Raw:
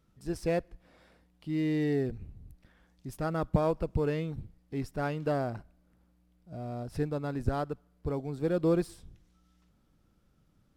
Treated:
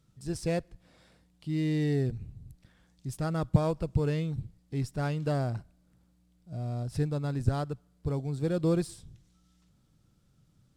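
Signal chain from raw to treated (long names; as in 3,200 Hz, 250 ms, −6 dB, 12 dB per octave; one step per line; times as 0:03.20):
octave-band graphic EQ 125/4,000/8,000 Hz +10/+5/+9 dB
level −2.5 dB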